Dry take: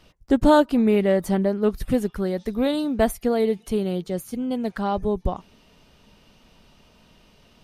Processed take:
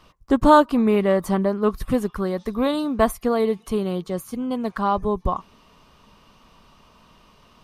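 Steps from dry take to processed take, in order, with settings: bell 1100 Hz +14 dB 0.4 oct

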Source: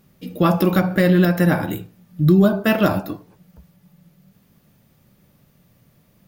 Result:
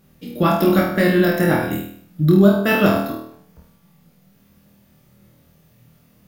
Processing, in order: flutter echo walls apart 4.3 m, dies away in 0.58 s; gain -1 dB

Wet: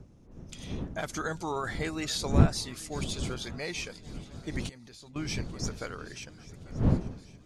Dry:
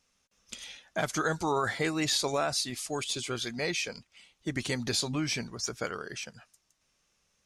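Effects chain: wind noise 190 Hz -29 dBFS; swung echo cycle 1.121 s, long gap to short 3:1, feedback 51%, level -20 dB; 4.69–5.16 level quantiser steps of 23 dB; gain -4.5 dB

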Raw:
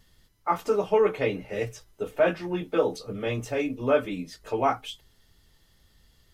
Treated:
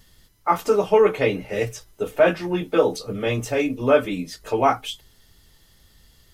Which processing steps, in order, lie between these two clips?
high shelf 5600 Hz +5 dB; gain +5.5 dB

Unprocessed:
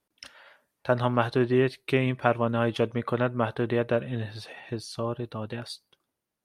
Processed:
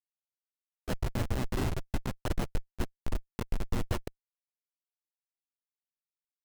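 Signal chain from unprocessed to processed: reverb RT60 1.2 s, pre-delay 0.109 s, DRR 2 dB; Schmitt trigger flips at -17 dBFS; upward compressor, threshold -35 dBFS; sample-and-hold 19×; harmoniser -5 st -8 dB, -4 st -4 dB, -3 st -12 dB; gain -5.5 dB

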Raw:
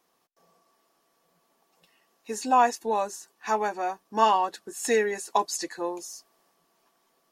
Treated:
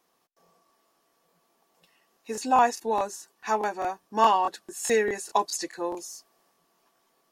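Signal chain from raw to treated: crackling interface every 0.21 s, samples 1024, repeat, from 0.44

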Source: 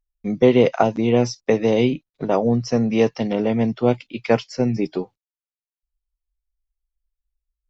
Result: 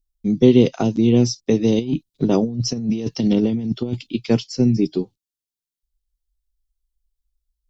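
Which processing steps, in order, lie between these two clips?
band shelf 1100 Hz -14.5 dB 2.6 oct; 1.79–4.16 negative-ratio compressor -24 dBFS, ratio -0.5; gain +5 dB

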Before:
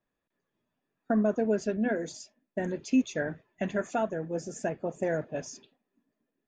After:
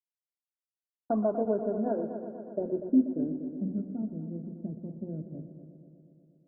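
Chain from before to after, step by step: elliptic low-pass 1400 Hz, stop band 50 dB; notches 60/120/180/240/300/360/420/480/540 Hz; requantised 10-bit, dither none; low-pass sweep 910 Hz -> 210 Hz, 1.89–3.68; dynamic EQ 320 Hz, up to +4 dB, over -52 dBFS, Q 2.3; multi-head echo 0.121 s, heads first and second, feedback 66%, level -13 dB; gain -4.5 dB

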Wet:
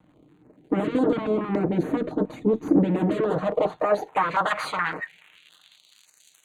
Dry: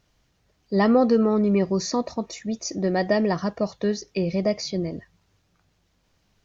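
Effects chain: minimum comb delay 6.5 ms; in parallel at -4 dB: sine folder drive 18 dB, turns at -11 dBFS; on the sum: crackle 160/s -29 dBFS; band-pass sweep 300 Hz -> 5800 Hz, 3.03–6.15; Butterworth band-stop 5300 Hz, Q 2.2; stepped notch 7.1 Hz 400–4800 Hz; gain +5 dB

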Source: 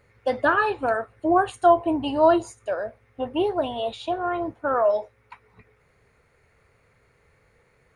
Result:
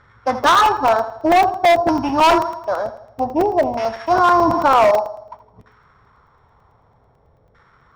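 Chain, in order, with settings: sample sorter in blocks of 8 samples; graphic EQ 500/1000/4000/8000 Hz -9/+5/+5/+11 dB; on a send: thinning echo 80 ms, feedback 51%, high-pass 200 Hz, level -12.5 dB; on the sum: LFO low-pass saw down 0.53 Hz 580–1500 Hz; high shelf 6900 Hz +5.5 dB; hard clip -17 dBFS, distortion -7 dB; crackling interface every 0.11 s, samples 128, zero, from 0.44; 4.11–4.9 fast leveller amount 70%; gain +7.5 dB

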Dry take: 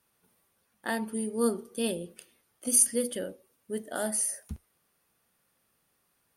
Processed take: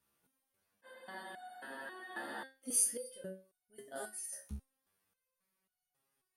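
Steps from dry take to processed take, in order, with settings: spectral freeze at 0.87, 1.55 s; stepped resonator 3.7 Hz 69–730 Hz; gain +1 dB

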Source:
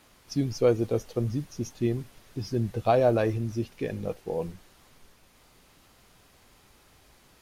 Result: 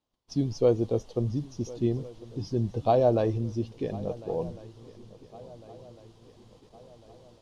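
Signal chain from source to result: band shelf 1800 Hz -9.5 dB 1.2 oct; swung echo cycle 1.402 s, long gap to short 3:1, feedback 50%, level -20 dB; gate -55 dBFS, range -24 dB; air absorption 80 m

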